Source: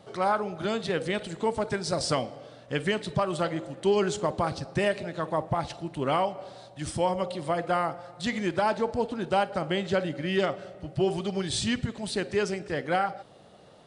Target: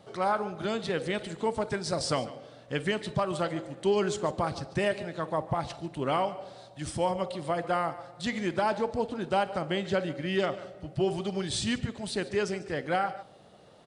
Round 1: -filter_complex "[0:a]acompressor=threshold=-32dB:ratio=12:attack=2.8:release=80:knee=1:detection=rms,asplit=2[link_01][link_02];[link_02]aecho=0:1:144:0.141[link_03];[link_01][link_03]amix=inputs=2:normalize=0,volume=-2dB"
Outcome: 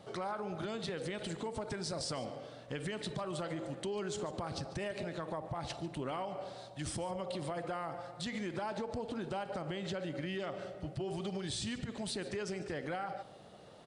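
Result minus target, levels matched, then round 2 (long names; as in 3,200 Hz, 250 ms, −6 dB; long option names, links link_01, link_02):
downward compressor: peak gain reduction +14 dB
-filter_complex "[0:a]asplit=2[link_01][link_02];[link_02]aecho=0:1:144:0.141[link_03];[link_01][link_03]amix=inputs=2:normalize=0,volume=-2dB"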